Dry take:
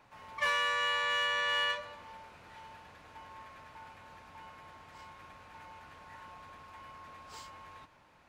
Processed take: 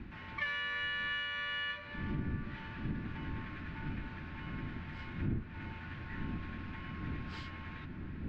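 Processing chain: wind noise 230 Hz -48 dBFS; band shelf 710 Hz -13 dB; compressor 4:1, threshold -45 dBFS, peak gain reduction 13.5 dB; air absorption 340 m; analogue delay 0.343 s, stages 4096, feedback 83%, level -12.5 dB; gain +11.5 dB

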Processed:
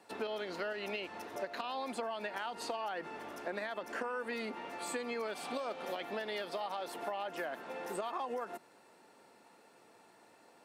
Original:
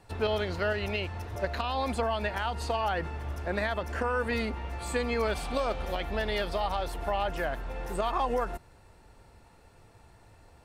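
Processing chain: HPF 220 Hz 24 dB/oct; compressor, threshold -34 dBFS, peak gain reduction 10 dB; gain -1.5 dB

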